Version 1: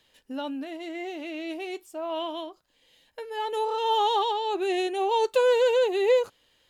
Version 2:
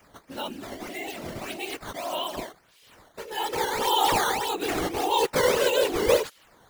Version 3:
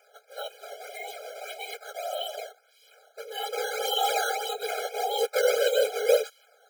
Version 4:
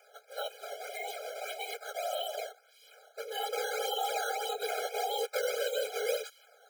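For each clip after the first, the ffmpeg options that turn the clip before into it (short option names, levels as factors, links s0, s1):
-af "aemphasis=mode=production:type=riaa,acrusher=samples=10:mix=1:aa=0.000001:lfo=1:lforange=16:lforate=1.7,afftfilt=real='hypot(re,im)*cos(2*PI*random(0))':imag='hypot(re,im)*sin(2*PI*random(1))':win_size=512:overlap=0.75,volume=2.24"
-af "afftfilt=real='re*eq(mod(floor(b*sr/1024/420),2),1)':imag='im*eq(mod(floor(b*sr/1024/420),2),1)':win_size=1024:overlap=0.75"
-filter_complex "[0:a]highpass=270,acrossover=split=1300|5800[s0][s1][s2];[s0]acompressor=threshold=0.0251:ratio=4[s3];[s1]acompressor=threshold=0.01:ratio=4[s4];[s2]acompressor=threshold=0.00631:ratio=4[s5];[s3][s4][s5]amix=inputs=3:normalize=0"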